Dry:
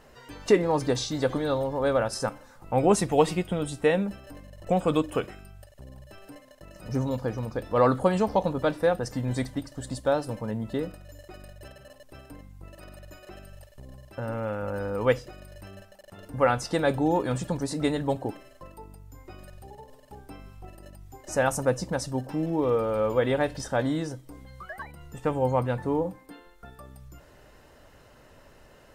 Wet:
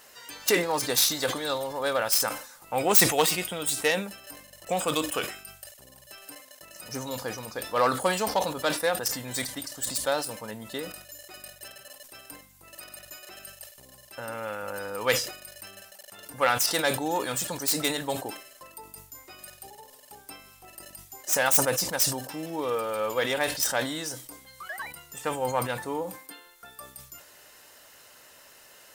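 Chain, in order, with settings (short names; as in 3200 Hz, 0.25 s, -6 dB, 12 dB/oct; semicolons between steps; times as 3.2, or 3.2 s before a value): tracing distortion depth 0.086 ms; tilt +4.5 dB/oct; sustainer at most 99 dB/s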